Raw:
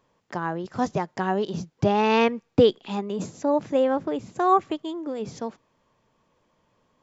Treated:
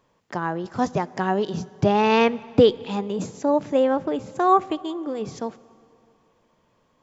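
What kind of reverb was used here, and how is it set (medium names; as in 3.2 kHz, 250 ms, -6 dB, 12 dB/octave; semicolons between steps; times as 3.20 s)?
plate-style reverb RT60 2.7 s, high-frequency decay 0.8×, DRR 19.5 dB; trim +2 dB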